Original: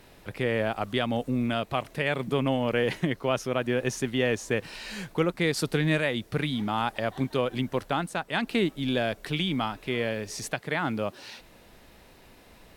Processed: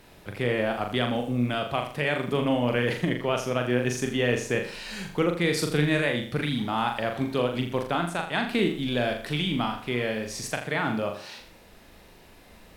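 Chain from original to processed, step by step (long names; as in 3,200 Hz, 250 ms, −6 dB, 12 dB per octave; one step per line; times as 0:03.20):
flutter between parallel walls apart 7 metres, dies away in 0.47 s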